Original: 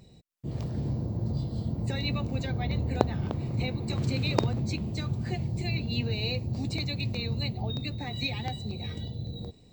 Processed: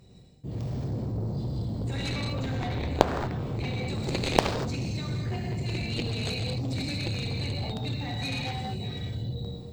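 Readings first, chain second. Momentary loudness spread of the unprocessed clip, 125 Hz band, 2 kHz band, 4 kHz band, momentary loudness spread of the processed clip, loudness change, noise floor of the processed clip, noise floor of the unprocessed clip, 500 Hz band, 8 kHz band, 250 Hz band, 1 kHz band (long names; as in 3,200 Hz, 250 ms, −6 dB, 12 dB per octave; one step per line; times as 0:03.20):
8 LU, −0.5 dB, +2.0 dB, +1.0 dB, 8 LU, +0.5 dB, −42 dBFS, −55 dBFS, +3.0 dB, +6.5 dB, 0.0 dB, +5.0 dB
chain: reverb whose tail is shaped and stops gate 270 ms flat, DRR −3 dB
harmonic generator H 7 −13 dB, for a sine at −3 dBFS
level +3 dB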